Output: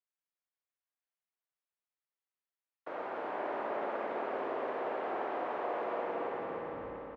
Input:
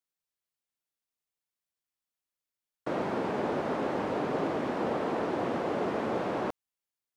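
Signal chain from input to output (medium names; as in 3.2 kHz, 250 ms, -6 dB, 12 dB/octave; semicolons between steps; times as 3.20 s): tape stop on the ending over 1.29 s; three-band isolator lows -21 dB, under 410 Hz, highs -18 dB, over 3 kHz; on a send: feedback delay 293 ms, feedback 54%, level -5 dB; on the sum: spring tank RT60 2.6 s, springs 54 ms, chirp 50 ms, DRR 1 dB; trim -6.5 dB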